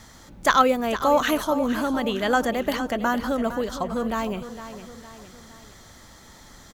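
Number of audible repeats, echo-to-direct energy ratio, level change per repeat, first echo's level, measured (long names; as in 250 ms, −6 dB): 3, −11.0 dB, −6.5 dB, −12.0 dB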